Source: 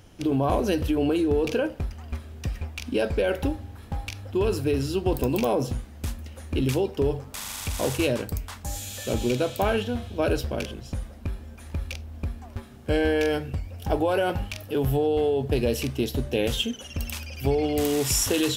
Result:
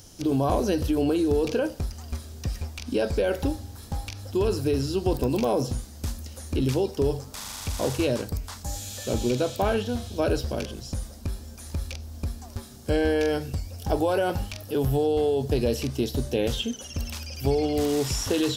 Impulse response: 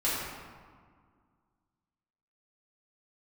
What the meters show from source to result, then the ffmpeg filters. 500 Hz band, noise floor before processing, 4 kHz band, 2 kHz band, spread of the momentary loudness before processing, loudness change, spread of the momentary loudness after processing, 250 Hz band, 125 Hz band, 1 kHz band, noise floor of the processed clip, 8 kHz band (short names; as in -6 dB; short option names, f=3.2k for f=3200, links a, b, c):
0.0 dB, -44 dBFS, -1.5 dB, -3.0 dB, 12 LU, -0.5 dB, 11 LU, 0.0 dB, 0.0 dB, -0.5 dB, -43 dBFS, -3.0 dB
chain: -filter_complex "[0:a]acrossover=split=3000[a][b];[b]acompressor=threshold=-52dB:ratio=4:attack=1:release=60[c];[a][c]amix=inputs=2:normalize=0,highshelf=f=3.6k:t=q:w=1.5:g=11.5"